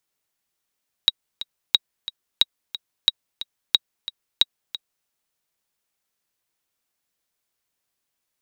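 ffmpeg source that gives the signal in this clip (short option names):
-f lavfi -i "aevalsrc='pow(10,(-1.5-14.5*gte(mod(t,2*60/180),60/180))/20)*sin(2*PI*3820*mod(t,60/180))*exp(-6.91*mod(t,60/180)/0.03)':d=4:s=44100"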